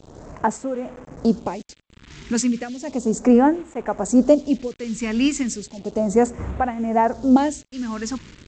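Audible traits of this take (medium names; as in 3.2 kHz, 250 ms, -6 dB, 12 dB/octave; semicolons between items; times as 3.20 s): tremolo triangle 1 Hz, depth 85%; a quantiser's noise floor 8-bit, dither none; phasing stages 2, 0.34 Hz, lowest notch 590–4600 Hz; G.722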